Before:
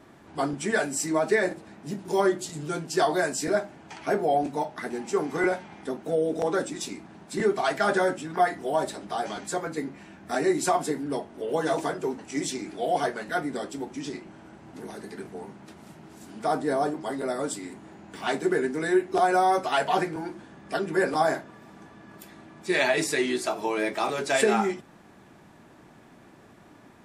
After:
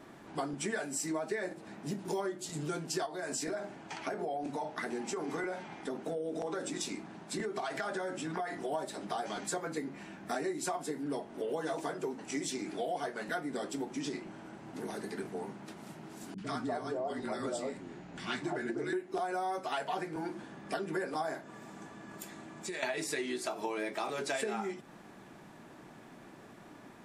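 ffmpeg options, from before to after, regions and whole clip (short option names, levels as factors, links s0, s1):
-filter_complex "[0:a]asettb=1/sr,asplit=3[s0][s1][s2];[s0]atrim=end=3.064[s3];[s1]atrim=start=3.06:end=8.72,asetpts=PTS-STARTPTS,afade=t=in:d=0.004:c=qsin,afade=t=out:st=5.656:d=0.004:c=qsin,lowpass=11000,acompressor=threshold=0.0355:ratio=4:attack=3.2:release=140:knee=1:detection=peak,bandreject=f=50:t=h:w=6,bandreject=f=100:t=h:w=6,bandreject=f=150:t=h:w=6,bandreject=f=200:t=h:w=6,bandreject=f=250:t=h:w=6,bandreject=f=300:t=h:w=6,bandreject=f=350:t=h:w=6,bandreject=f=400:t=h:w=6,bandreject=f=450:t=h:w=6,bandreject=f=500:t=h:w=6[s4];[s2]atrim=start=8.716[s5];[s3][s4]acrossfade=d=0.004:c1=hsin:c2=qsin[s6];[s6][s5]acrossfade=d=0.004:c1=qsin:c2=hsin,asettb=1/sr,asplit=3[s7][s8][s9];[s7]atrim=end=16.344[s10];[s8]atrim=start=16.34:end=18.93,asetpts=PTS-STARTPTS,afade=t=in:d=0.004:c=qsin,afade=t=out:st=2.586:d=0.004:c=qsin,lowpass=7000,afreqshift=-24,acrossover=split=330|1000[s11][s12][s13];[s13]adelay=40[s14];[s12]adelay=240[s15];[s11][s15][s14]amix=inputs=3:normalize=0,atrim=end_sample=114219[s16];[s9]atrim=start=18.926[s17];[s10][s16]acrossfade=d=0.004:c1=hsin:c2=qsin[s18];[s18][s17]acrossfade=d=0.004:c1=qsin:c2=hsin,asettb=1/sr,asplit=3[s19][s20][s21];[s19]atrim=end=21.434[s22];[s20]atrim=start=21.43:end=22.83,asetpts=PTS-STARTPTS,afade=t=in:d=0.004:c=qsin,afade=t=out:st=1.396:d=0.004:c=qsin,equalizer=f=7300:t=o:w=0.43:g=8,acompressor=threshold=0.0158:ratio=8:attack=3.2:release=140:knee=1:detection=peak[s23];[s21]atrim=start=22.826[s24];[s22][s23]acrossfade=d=0.004:c1=hsin:c2=qsin[s25];[s25][s24]acrossfade=d=0.004:c1=qsin:c2=hsin,equalizer=f=74:t=o:w=0.67:g=-12.5,acompressor=threshold=0.0224:ratio=6"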